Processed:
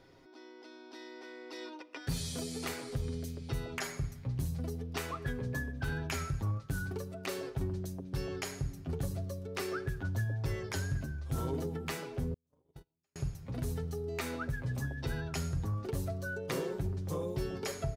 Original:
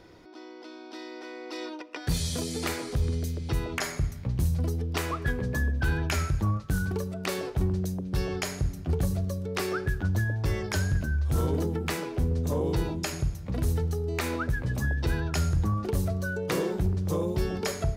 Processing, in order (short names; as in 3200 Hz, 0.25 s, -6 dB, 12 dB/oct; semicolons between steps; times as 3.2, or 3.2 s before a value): comb 7.5 ms, depth 55%; 12.34–13.16 gate -21 dBFS, range -48 dB; gain -8 dB